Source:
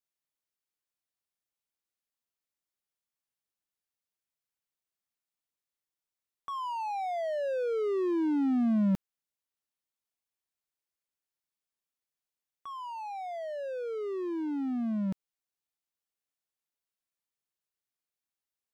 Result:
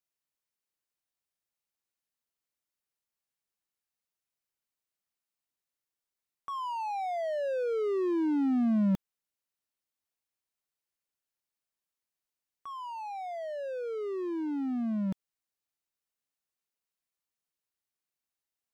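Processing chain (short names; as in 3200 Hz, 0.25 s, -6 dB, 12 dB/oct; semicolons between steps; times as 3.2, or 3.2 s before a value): notch 3400 Hz, Q 29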